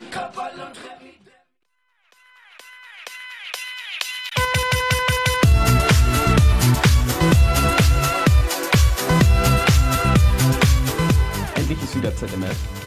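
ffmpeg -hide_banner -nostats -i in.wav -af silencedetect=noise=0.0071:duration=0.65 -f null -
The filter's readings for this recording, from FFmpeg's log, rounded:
silence_start: 1.29
silence_end: 2.12 | silence_duration: 0.84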